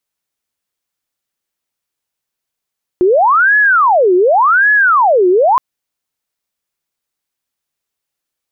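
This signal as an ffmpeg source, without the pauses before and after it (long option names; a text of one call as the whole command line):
ffmpeg -f lavfi -i "aevalsrc='0.473*sin(2*PI*(1028.5*t-671.5/(2*PI*0.88)*sin(2*PI*0.88*t)))':duration=2.57:sample_rate=44100" out.wav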